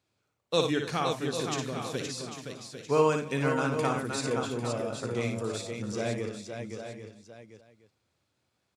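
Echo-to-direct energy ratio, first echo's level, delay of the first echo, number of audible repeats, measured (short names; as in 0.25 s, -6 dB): -1.0 dB, -5.5 dB, 58 ms, 10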